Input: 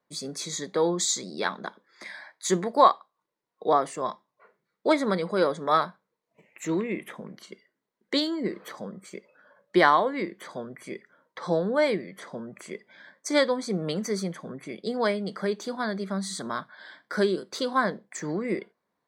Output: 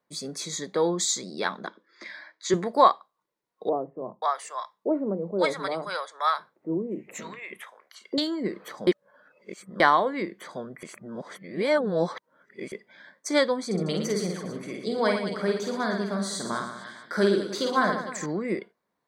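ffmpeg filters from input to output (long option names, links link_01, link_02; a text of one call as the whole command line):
ffmpeg -i in.wav -filter_complex "[0:a]asettb=1/sr,asplit=3[link_01][link_02][link_03];[link_01]atrim=end=1.674[link_04];[link_02]atrim=start=1.67:end=2.54,asetpts=PTS-STARTPTS,afade=type=in:duration=0.004:curve=qsin,afade=type=out:start_time=0.866:duration=0.004:curve=qsin,highpass=140,equalizer=frequency=150:width_type=q:width=4:gain=-8,equalizer=frequency=320:width_type=q:width=4:gain=6,equalizer=frequency=800:width_type=q:width=4:gain=-9,lowpass=frequency=6300:width=0.5412,lowpass=frequency=6300:width=1.3066[link_05];[link_03]atrim=start=2.536[link_06];[link_04][link_05]acrossfade=duration=0.004:curve1=hsin:curve2=qsin[link_07];[link_07][link_06]acrossfade=duration=0.004:curve1=qsin:curve2=hsin,asettb=1/sr,asplit=3[link_08][link_09][link_10];[link_08]atrim=end=3.694[link_11];[link_09]atrim=start=3.69:end=8.18,asetpts=PTS-STARTPTS,afade=type=in:duration=0.004:curve=qsin,afade=type=out:start_time=4.486:duration=0.004:curve=qsin,acrossover=split=160|700[link_12][link_13][link_14];[link_12]adelay=30[link_15];[link_14]adelay=530[link_16];[link_15][link_13][link_16]amix=inputs=3:normalize=0,atrim=end_sample=198009[link_17];[link_10]atrim=start=8.176[link_18];[link_11][link_17]acrossfade=duration=0.004:curve1=hsin:curve2=qsin[link_19];[link_19][link_18]acrossfade=duration=0.004:curve1=qsin:curve2=hsin,asettb=1/sr,asplit=3[link_20][link_21][link_22];[link_20]atrim=end=13.664[link_23];[link_21]atrim=start=13.66:end=18.26,asetpts=PTS-STARTPTS,afade=type=in:duration=0.004:curve=qsin,afade=type=out:start_time=4.596:duration=0.004:curve=qsin,aecho=1:1:50|115|199.5|309.4|452.2|637.8:0.631|0.398|0.251|0.158|0.1|0.0631,atrim=end_sample=202860[link_24];[link_22]atrim=start=18.256[link_25];[link_23][link_24]acrossfade=duration=0.004:curve1=hsin:curve2=qsin[link_26];[link_26][link_25]acrossfade=duration=0.004:curve1=qsin:curve2=hsin,asplit=5[link_27][link_28][link_29][link_30][link_31];[link_27]atrim=end=8.872[link_32];[link_28]atrim=start=8.868:end=9.802,asetpts=PTS-STARTPTS,areverse[link_33];[link_29]atrim=start=9.798:end=10.832[link_34];[link_30]atrim=start=10.828:end=12.722,asetpts=PTS-STARTPTS,areverse[link_35];[link_31]atrim=start=12.718[link_36];[link_32][link_33]acrossfade=duration=0.004:curve1=hsin:curve2=hsin[link_37];[link_37][link_34]acrossfade=duration=0.004:curve1=hsin:curve2=hsin[link_38];[link_38][link_35]acrossfade=duration=0.004:curve1=hsin:curve2=hsin[link_39];[link_39][link_36]acrossfade=duration=0.004:curve1=hsin:curve2=hsin" out.wav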